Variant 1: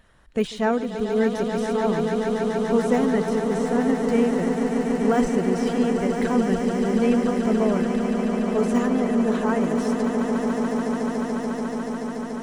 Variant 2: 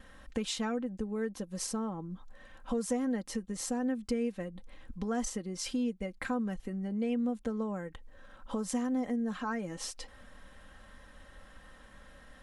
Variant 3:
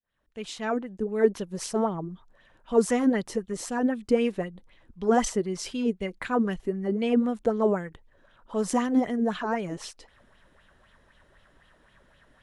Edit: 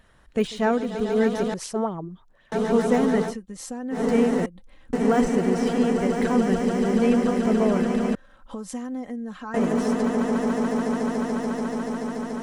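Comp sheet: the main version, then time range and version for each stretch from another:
1
1.54–2.52 s: from 3
3.30–3.95 s: from 2, crossfade 0.10 s
4.46–4.93 s: from 2
8.15–9.54 s: from 2

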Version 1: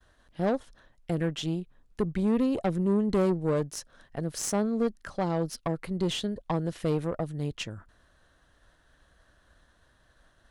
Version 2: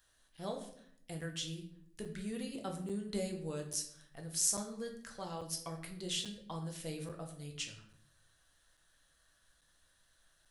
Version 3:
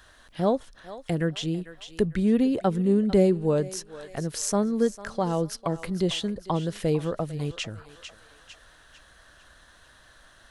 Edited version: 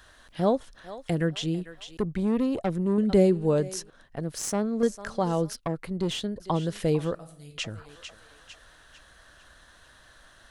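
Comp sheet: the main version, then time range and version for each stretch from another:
3
1.97–2.98 s: from 1
3.90–4.83 s: from 1
5.53–6.40 s: from 1
7.15–7.58 s: from 2

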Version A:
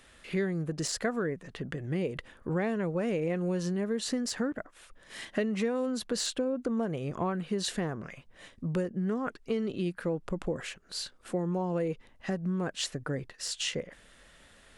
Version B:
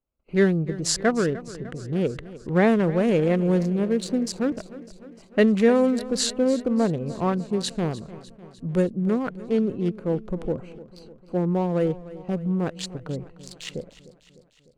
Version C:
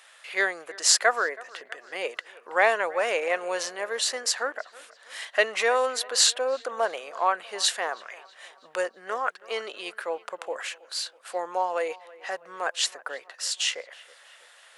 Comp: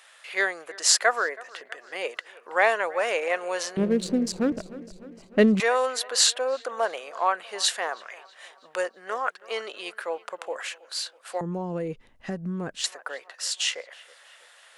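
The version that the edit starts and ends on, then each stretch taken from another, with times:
C
3.77–5.60 s: from B
11.41–12.84 s: from A

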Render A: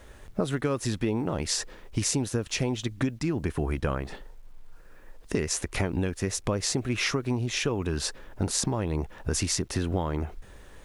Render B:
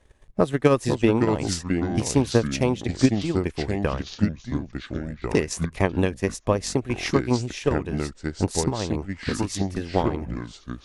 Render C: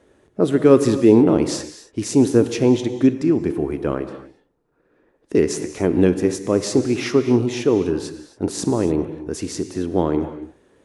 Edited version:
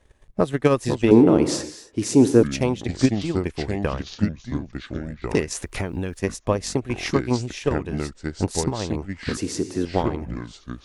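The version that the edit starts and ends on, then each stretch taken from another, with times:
B
1.11–2.43 s: from C
5.55–6.19 s: from A
9.37–9.85 s: from C

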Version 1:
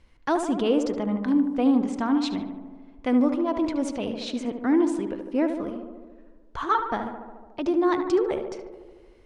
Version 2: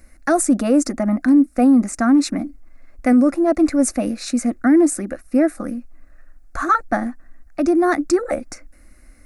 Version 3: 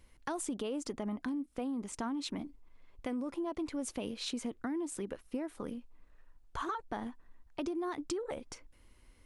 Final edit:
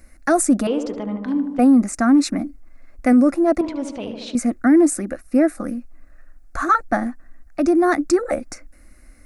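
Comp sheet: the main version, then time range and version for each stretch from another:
2
0.67–1.59 s: from 1
3.61–4.35 s: from 1
not used: 3

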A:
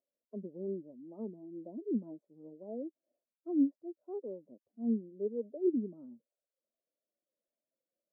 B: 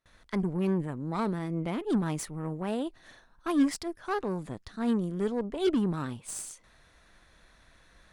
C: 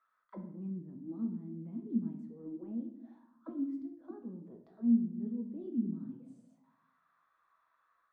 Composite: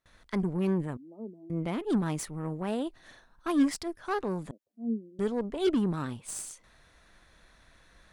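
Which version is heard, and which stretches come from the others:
B
0.97–1.50 s: from A
4.51–5.19 s: from A
not used: C

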